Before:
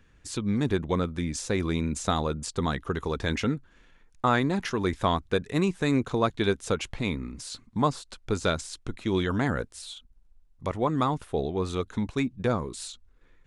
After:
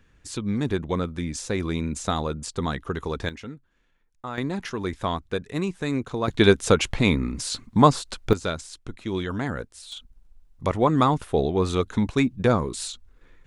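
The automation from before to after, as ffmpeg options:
-af "asetnsamples=n=441:p=0,asendcmd='3.29 volume volume -11dB;4.38 volume volume -2dB;6.28 volume volume 9dB;8.33 volume volume -2dB;9.92 volume volume 6dB',volume=1.06"

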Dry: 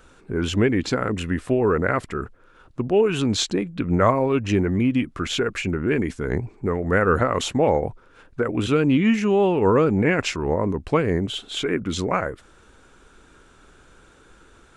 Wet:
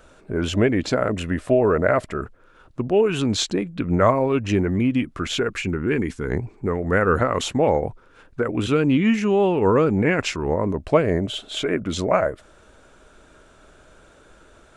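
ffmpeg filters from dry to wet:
-af "asetnsamples=n=441:p=0,asendcmd='2.21 equalizer g 3;5.49 equalizer g -7;6.31 equalizer g 1;10.71 equalizer g 12.5',equalizer=f=620:t=o:w=0.29:g=12.5"

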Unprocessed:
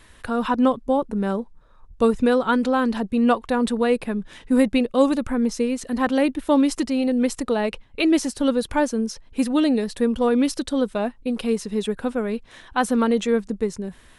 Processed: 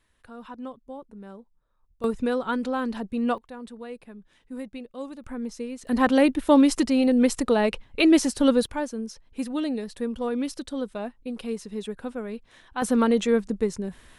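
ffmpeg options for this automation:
-af "asetnsamples=n=441:p=0,asendcmd='2.04 volume volume -7dB;3.38 volume volume -18.5dB;5.24 volume volume -11dB;5.87 volume volume 1dB;8.66 volume volume -8.5dB;12.82 volume volume -1dB',volume=0.112"

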